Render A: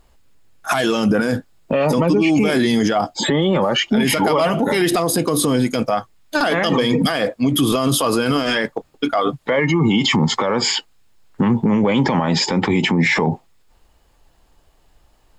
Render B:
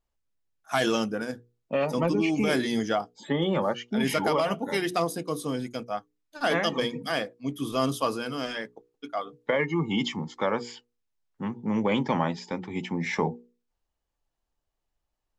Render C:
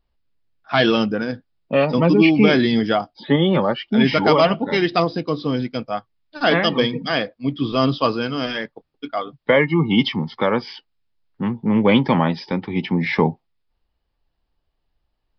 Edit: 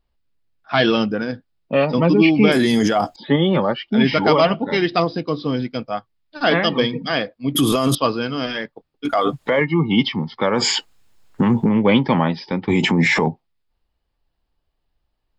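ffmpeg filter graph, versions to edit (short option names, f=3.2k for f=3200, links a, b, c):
-filter_complex "[0:a]asplit=5[a][b][c][d][e];[2:a]asplit=6[f][g][h][i][j][k];[f]atrim=end=2.522[l];[a]atrim=start=2.518:end=3.162[m];[g]atrim=start=3.158:end=7.552[n];[b]atrim=start=7.548:end=7.952[o];[h]atrim=start=7.948:end=9.052[p];[c]atrim=start=9.048:end=9.612[q];[i]atrim=start=9.608:end=10.552[r];[d]atrim=start=10.548:end=11.692[s];[j]atrim=start=11.688:end=12.682[t];[e]atrim=start=12.678:end=13.282[u];[k]atrim=start=13.278[v];[l][m]acrossfade=d=0.004:c1=hsin:c2=hsin[w];[w][n]acrossfade=d=0.004:c1=hsin:c2=hsin[x];[x][o]acrossfade=d=0.004:c1=hsin:c2=hsin[y];[y][p]acrossfade=d=0.004:c1=hsin:c2=hsin[z];[z][q]acrossfade=d=0.004:c1=hsin:c2=hsin[aa];[aa][r]acrossfade=d=0.004:c1=hsin:c2=hsin[ab];[ab][s]acrossfade=d=0.004:c1=hsin:c2=hsin[ac];[ac][t]acrossfade=d=0.004:c1=hsin:c2=hsin[ad];[ad][u]acrossfade=d=0.004:c1=hsin:c2=hsin[ae];[ae][v]acrossfade=d=0.004:c1=hsin:c2=hsin"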